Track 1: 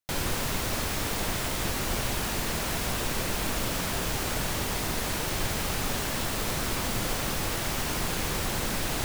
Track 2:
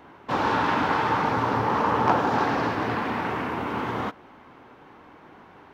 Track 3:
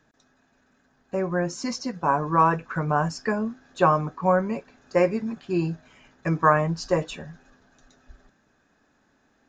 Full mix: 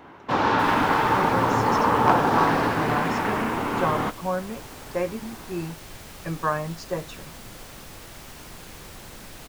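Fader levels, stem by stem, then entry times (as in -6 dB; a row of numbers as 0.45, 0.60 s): -12.5, +2.5, -6.5 dB; 0.50, 0.00, 0.00 s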